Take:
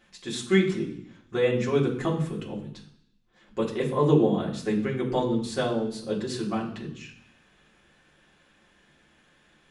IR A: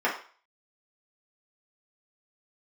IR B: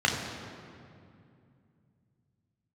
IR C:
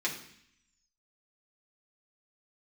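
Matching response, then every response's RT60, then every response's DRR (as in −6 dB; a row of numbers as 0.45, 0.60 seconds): C; 0.40, 2.5, 0.65 seconds; −6.0, −1.0, −4.5 decibels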